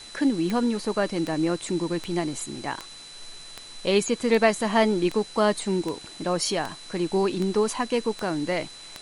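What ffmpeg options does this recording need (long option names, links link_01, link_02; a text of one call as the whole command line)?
ffmpeg -i in.wav -af "adeclick=threshold=4,bandreject=frequency=4000:width=30,afftdn=noise_reduction=26:noise_floor=-43" out.wav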